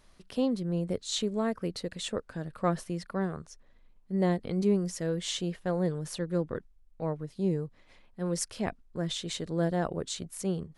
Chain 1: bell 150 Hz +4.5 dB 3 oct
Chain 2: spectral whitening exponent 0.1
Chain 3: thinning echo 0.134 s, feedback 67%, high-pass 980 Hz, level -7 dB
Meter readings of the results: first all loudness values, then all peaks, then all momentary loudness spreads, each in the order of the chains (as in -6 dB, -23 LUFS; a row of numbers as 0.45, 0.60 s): -29.0, -30.0, -32.0 LUFS; -12.5, -8.5, -15.5 dBFS; 9, 8, 8 LU